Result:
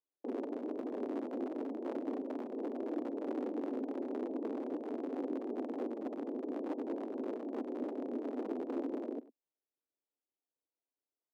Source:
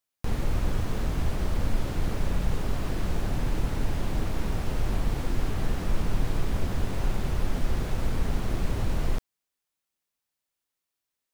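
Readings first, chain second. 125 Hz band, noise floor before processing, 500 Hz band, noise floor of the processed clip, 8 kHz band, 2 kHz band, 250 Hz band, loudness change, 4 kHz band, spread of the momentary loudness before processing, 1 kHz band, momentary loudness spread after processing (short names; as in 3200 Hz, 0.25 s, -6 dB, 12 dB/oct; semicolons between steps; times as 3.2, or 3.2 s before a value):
under -35 dB, under -85 dBFS, -0.5 dB, under -85 dBFS, under -25 dB, -18.0 dB, -2.0 dB, -8.5 dB, under -20 dB, 1 LU, -9.0 dB, 2 LU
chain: on a send: echo 0.105 s -21 dB; on the sum: limiter -20 dBFS, peak gain reduction 7 dB; Gaussian blur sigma 17 samples; full-wave rectifier; steep high-pass 250 Hz 72 dB/oct; gain +6 dB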